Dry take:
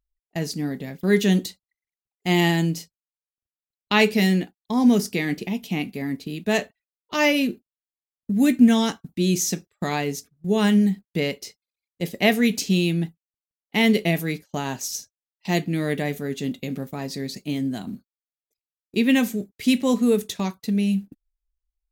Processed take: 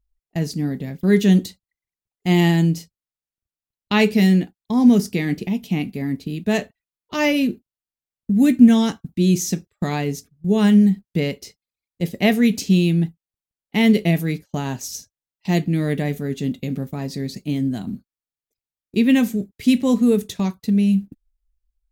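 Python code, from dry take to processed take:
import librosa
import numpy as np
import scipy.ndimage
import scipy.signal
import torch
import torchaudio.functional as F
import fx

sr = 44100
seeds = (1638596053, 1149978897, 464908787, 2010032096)

y = fx.low_shelf(x, sr, hz=240.0, db=11.0)
y = y * 10.0 ** (-1.5 / 20.0)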